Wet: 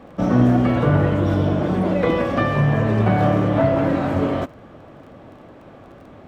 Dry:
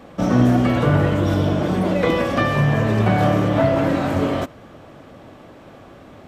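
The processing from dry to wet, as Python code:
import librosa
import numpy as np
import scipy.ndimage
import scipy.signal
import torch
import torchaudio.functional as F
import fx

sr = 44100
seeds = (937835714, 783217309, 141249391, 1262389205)

y = fx.dmg_crackle(x, sr, seeds[0], per_s=20.0, level_db=-34.0)
y = fx.high_shelf(y, sr, hz=3400.0, db=-11.0)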